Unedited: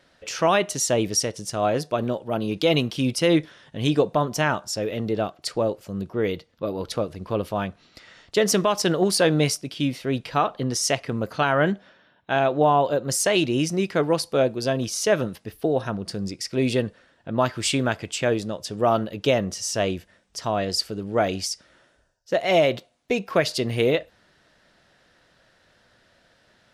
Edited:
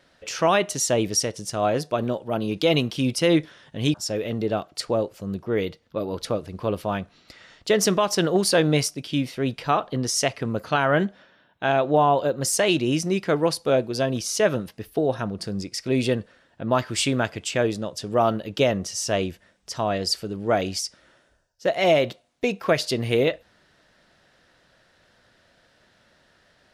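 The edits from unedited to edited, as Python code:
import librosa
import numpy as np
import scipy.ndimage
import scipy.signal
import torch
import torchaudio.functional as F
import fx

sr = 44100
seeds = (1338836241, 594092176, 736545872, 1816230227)

y = fx.edit(x, sr, fx.cut(start_s=3.94, length_s=0.67), tone=tone)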